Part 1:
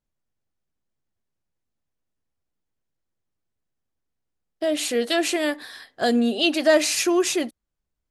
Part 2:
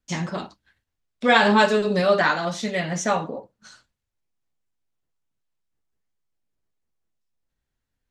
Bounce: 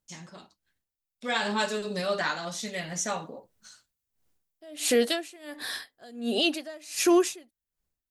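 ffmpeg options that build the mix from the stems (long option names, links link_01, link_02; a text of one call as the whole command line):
ffmpeg -i stem1.wav -i stem2.wav -filter_complex "[0:a]highshelf=frequency=6500:gain=6.5,aeval=exprs='val(0)*pow(10,-33*(0.5-0.5*cos(2*PI*1.4*n/s))/20)':channel_layout=same,volume=0dB[link_01];[1:a]aemphasis=mode=production:type=75fm,volume=-18dB[link_02];[link_01][link_02]amix=inputs=2:normalize=0,dynaudnorm=framelen=390:gausssize=7:maxgain=8.5dB,alimiter=limit=-13.5dB:level=0:latency=1:release=286" out.wav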